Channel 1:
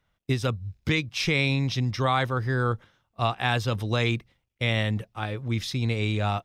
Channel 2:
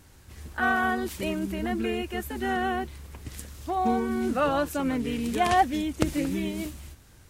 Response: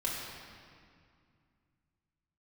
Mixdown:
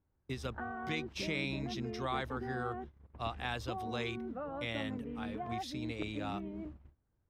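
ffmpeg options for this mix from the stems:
-filter_complex "[0:a]highpass=160,volume=-12.5dB[a];[1:a]lowpass=1.1k,acompressor=threshold=-33dB:ratio=8,volume=-5.5dB[b];[a][b]amix=inputs=2:normalize=0,agate=range=-19dB:threshold=-46dB:ratio=16:detection=peak"

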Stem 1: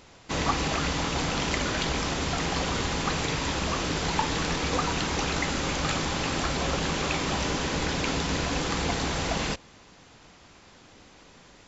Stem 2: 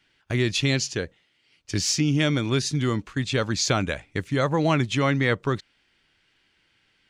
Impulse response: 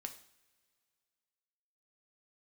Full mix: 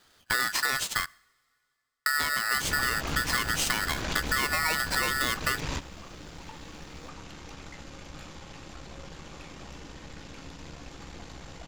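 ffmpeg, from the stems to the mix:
-filter_complex "[0:a]lowshelf=f=120:g=8,aeval=exprs='(tanh(14.1*val(0)+0.7)-tanh(0.7))/14.1':c=same,adelay=2300,volume=-1dB,asplit=2[a][b];[b]volume=-11dB[c];[1:a]aeval=exprs='val(0)*sgn(sin(2*PI*1600*n/s))':c=same,volume=3dB,asplit=3[d][e][f];[d]atrim=end=1.06,asetpts=PTS-STARTPTS,afade=t=out:st=1.056:d=0.004:c=hsin[g];[e]atrim=start=1.06:end=2.06,asetpts=PTS-STARTPTS,volume=0[h];[f]atrim=start=2.06,asetpts=PTS-STARTPTS,afade=t=in:d=0.004:c=hsin[i];[g][h][i]concat=n=3:v=0:a=1,asplit=3[j][k][l];[k]volume=-13.5dB[m];[l]apad=whole_len=616420[n];[a][n]sidechaingate=range=-33dB:threshold=-49dB:ratio=16:detection=peak[o];[2:a]atrim=start_sample=2205[p];[c][m]amix=inputs=2:normalize=0[q];[q][p]afir=irnorm=-1:irlink=0[r];[o][j][r]amix=inputs=3:normalize=0,acompressor=threshold=-24dB:ratio=10"

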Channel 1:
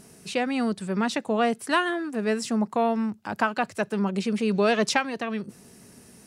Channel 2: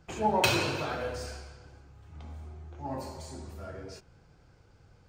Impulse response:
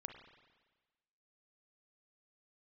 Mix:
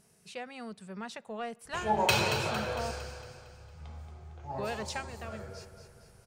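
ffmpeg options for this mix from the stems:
-filter_complex "[0:a]acontrast=53,volume=-20dB,asplit=3[a][b][c];[a]atrim=end=2.91,asetpts=PTS-STARTPTS,afade=t=out:st=2.906:d=0.004:c=hsin[d];[b]atrim=start=2.91:end=4.58,asetpts=PTS-STARTPTS,volume=0[e];[c]atrim=start=4.58,asetpts=PTS-STARTPTS,afade=t=in:d=0.004:c=hsin[f];[d][e][f]concat=n=3:v=0:a=1,asplit=2[g][h];[h]volume=-15dB[i];[1:a]adelay=1650,volume=-0.5dB,asplit=2[j][k];[k]volume=-9dB[l];[2:a]atrim=start_sample=2205[m];[i][m]afir=irnorm=-1:irlink=0[n];[l]aecho=0:1:228|456|684|912|1140|1368|1596:1|0.5|0.25|0.125|0.0625|0.0312|0.0156[o];[g][j][n][o]amix=inputs=4:normalize=0,equalizer=f=290:w=3.4:g=-15"

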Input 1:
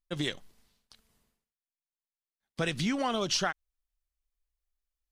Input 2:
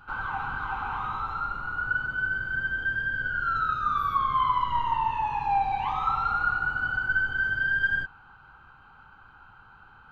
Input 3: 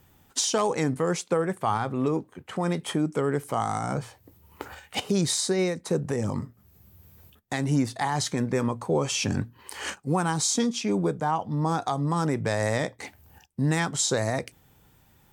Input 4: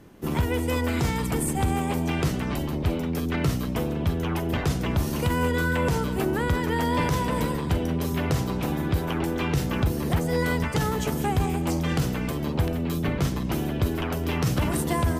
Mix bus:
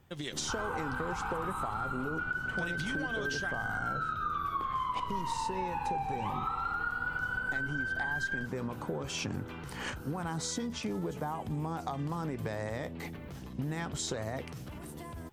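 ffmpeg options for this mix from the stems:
-filter_complex "[0:a]acompressor=threshold=-34dB:ratio=4,dynaudnorm=f=180:g=3:m=6dB,volume=-4dB[a];[1:a]adelay=400,volume=-1.5dB[b];[2:a]lowpass=f=3.2k:p=1,acompressor=threshold=-26dB:ratio=6,volume=-3dB[c];[3:a]alimiter=limit=-21.5dB:level=0:latency=1:release=152,adelay=100,volume=-14dB[d];[a][b][c][d]amix=inputs=4:normalize=0,acompressor=threshold=-31dB:ratio=6"

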